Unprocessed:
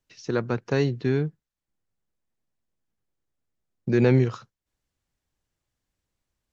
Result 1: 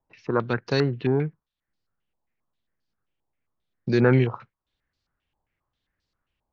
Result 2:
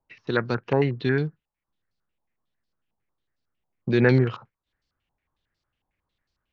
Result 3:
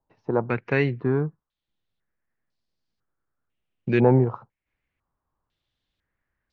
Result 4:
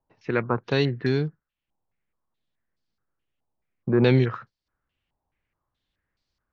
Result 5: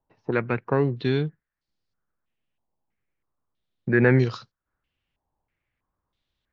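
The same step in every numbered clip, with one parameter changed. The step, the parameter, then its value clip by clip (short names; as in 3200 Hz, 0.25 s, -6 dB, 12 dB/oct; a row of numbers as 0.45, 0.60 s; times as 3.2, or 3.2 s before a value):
stepped low-pass, rate: 7.5, 11, 2, 4.7, 3.1 Hz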